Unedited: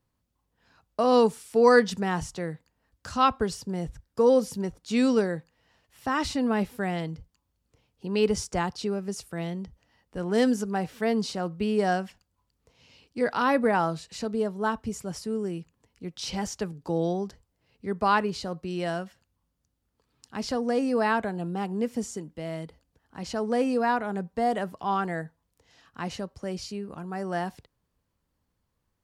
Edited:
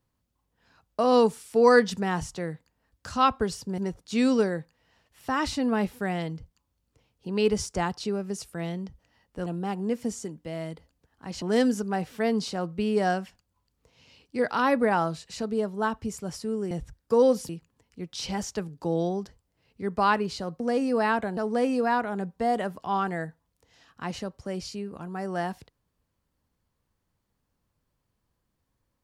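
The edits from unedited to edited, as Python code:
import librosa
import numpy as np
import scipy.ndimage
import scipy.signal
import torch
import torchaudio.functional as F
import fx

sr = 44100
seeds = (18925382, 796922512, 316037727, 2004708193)

y = fx.edit(x, sr, fx.move(start_s=3.78, length_s=0.78, to_s=15.53),
    fx.cut(start_s=18.64, length_s=1.97),
    fx.move(start_s=21.38, length_s=1.96, to_s=10.24), tone=tone)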